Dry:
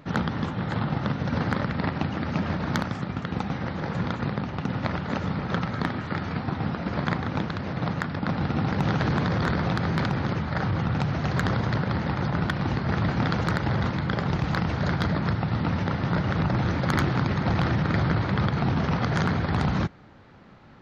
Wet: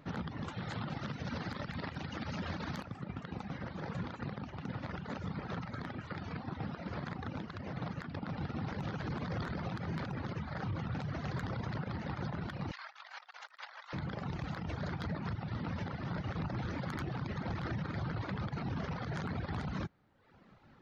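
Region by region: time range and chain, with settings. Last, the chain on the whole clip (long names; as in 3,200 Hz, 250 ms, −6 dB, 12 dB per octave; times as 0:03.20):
0:00.48–0:02.85: high-shelf EQ 2,500 Hz +9.5 dB + repeating echo 209 ms, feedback 42%, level −12.5 dB
0:12.71–0:13.93: Bessel high-pass filter 1,200 Hz, order 8 + compressor whose output falls as the input rises −40 dBFS, ratio −0.5
whole clip: reverb reduction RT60 0.86 s; brickwall limiter −21.5 dBFS; level −8 dB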